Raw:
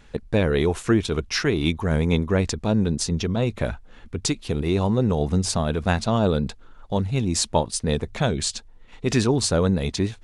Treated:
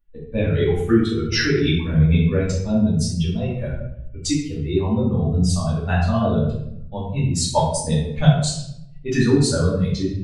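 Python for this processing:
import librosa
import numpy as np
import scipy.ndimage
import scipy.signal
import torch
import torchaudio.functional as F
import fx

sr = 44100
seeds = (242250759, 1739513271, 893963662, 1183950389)

y = fx.bin_expand(x, sr, power=2.0)
y = fx.transient(y, sr, attack_db=6, sustain_db=-12, at=(7.56, 8.53), fade=0.02)
y = fx.peak_eq(y, sr, hz=1600.0, db=13.0, octaves=0.22, at=(9.12, 9.55))
y = fx.room_shoebox(y, sr, seeds[0], volume_m3=200.0, walls='mixed', distance_m=2.5)
y = fx.env_flatten(y, sr, amount_pct=50, at=(1.32, 1.79))
y = y * librosa.db_to_amplitude(-3.0)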